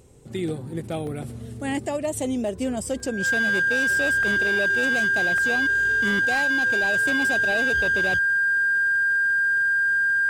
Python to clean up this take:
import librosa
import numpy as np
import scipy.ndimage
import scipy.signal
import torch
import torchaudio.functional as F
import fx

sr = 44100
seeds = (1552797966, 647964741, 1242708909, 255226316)

y = fx.fix_declip(x, sr, threshold_db=-18.5)
y = fx.notch(y, sr, hz=1600.0, q=30.0)
y = fx.fix_interpolate(y, sr, at_s=(1.07, 3.0, 4.23, 5.38), length_ms=1.6)